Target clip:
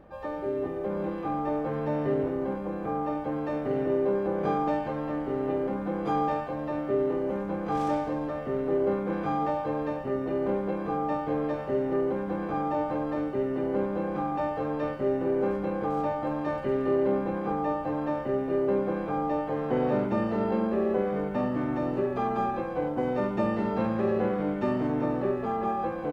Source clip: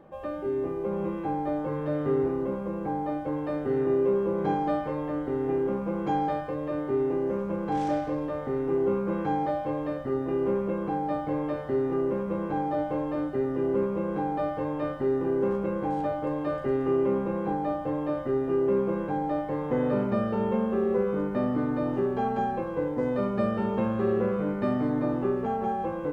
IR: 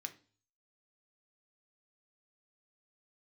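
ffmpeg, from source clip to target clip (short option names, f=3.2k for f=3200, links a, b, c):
-filter_complex "[0:a]aeval=exprs='val(0)+0.00112*(sin(2*PI*50*n/s)+sin(2*PI*2*50*n/s)/2+sin(2*PI*3*50*n/s)/3+sin(2*PI*4*50*n/s)/4+sin(2*PI*5*50*n/s)/5)':c=same,aecho=1:1:94:0.126,asplit=2[a][b];[b]asetrate=66075,aresample=44100,atempo=0.66742,volume=-7dB[c];[a][c]amix=inputs=2:normalize=0,volume=-1.5dB"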